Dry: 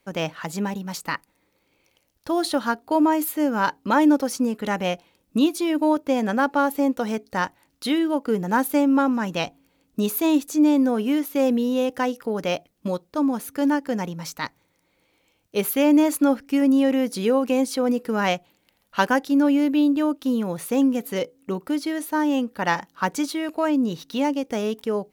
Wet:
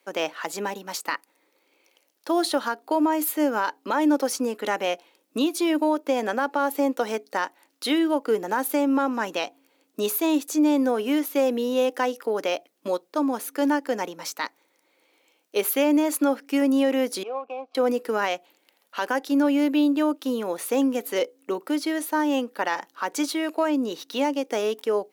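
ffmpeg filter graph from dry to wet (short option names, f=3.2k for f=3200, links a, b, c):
-filter_complex "[0:a]asettb=1/sr,asplit=3[a][b][c];[a]atrim=end=17.234[d];[b]atrim=start=17.23:end=17.75,asetpts=PTS-STARTPTS,afade=t=in:d=0.004:c=qsin,afade=t=out:st=0.516:d=0.004:c=qsin,adynamicsmooth=sensitivity=3:basefreq=720,asplit=3[e][f][g];[e]bandpass=f=730:t=q:w=8,volume=0dB[h];[f]bandpass=f=1.09k:t=q:w=8,volume=-6dB[i];[g]bandpass=f=2.44k:t=q:w=8,volume=-9dB[j];[h][i][j]amix=inputs=3:normalize=0[k];[c]atrim=start=17.746[l];[d][k]acrossfade=d=0.004:c1=hsin:c2=qsin[m];[m][l]acrossfade=d=0.004:c1=qsin:c2=hsin,highpass=f=300:w=0.5412,highpass=f=300:w=1.3066,alimiter=limit=-15.5dB:level=0:latency=1:release=133,volume=2dB"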